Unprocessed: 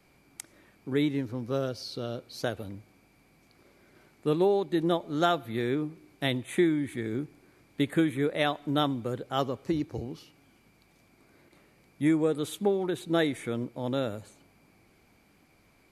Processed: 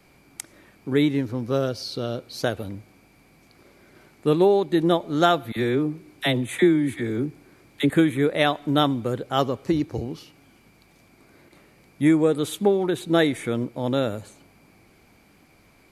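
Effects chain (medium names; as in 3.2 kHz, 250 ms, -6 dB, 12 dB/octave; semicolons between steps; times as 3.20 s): 5.52–7.90 s: phase dispersion lows, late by 46 ms, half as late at 660 Hz; trim +6.5 dB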